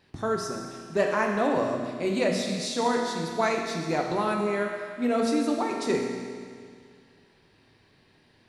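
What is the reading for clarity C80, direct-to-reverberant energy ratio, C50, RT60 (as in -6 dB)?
4.5 dB, 0.5 dB, 3.0 dB, 2.1 s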